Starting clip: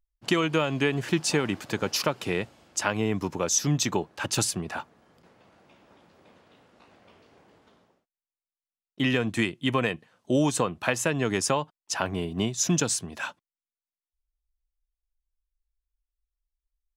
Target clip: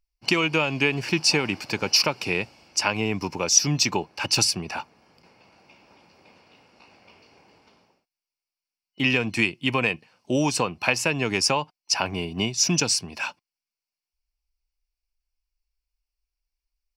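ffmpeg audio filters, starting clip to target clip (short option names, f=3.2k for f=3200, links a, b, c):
-af "superequalizer=9b=1.58:12b=2.82:14b=3.55"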